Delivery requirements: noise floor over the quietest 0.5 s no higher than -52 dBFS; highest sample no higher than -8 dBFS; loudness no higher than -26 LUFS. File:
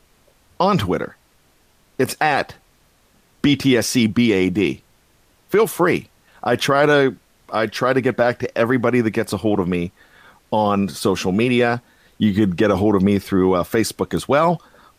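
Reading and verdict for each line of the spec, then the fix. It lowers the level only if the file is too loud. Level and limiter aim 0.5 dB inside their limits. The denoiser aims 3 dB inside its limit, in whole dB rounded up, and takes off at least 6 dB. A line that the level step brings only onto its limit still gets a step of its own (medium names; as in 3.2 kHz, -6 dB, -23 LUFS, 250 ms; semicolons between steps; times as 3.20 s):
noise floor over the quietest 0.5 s -57 dBFS: pass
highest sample -5.5 dBFS: fail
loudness -18.5 LUFS: fail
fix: trim -8 dB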